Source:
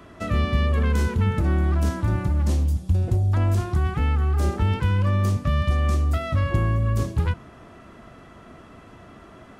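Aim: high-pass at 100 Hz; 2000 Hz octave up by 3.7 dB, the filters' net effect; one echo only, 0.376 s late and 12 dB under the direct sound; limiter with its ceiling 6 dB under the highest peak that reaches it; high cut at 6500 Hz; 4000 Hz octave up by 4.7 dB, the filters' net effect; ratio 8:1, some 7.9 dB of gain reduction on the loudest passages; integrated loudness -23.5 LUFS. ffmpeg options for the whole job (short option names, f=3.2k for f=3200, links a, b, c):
-af "highpass=100,lowpass=6.5k,equalizer=f=2k:t=o:g=3.5,equalizer=f=4k:t=o:g=5.5,acompressor=threshold=-28dB:ratio=8,alimiter=level_in=1dB:limit=-24dB:level=0:latency=1,volume=-1dB,aecho=1:1:376:0.251,volume=10.5dB"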